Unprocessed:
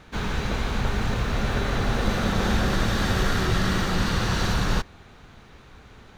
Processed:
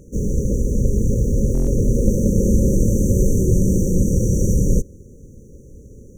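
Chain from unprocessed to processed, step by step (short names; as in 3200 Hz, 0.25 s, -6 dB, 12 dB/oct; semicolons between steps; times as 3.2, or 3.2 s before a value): brick-wall FIR band-stop 580–5700 Hz; stuck buffer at 1.53, samples 1024, times 5; gain +8 dB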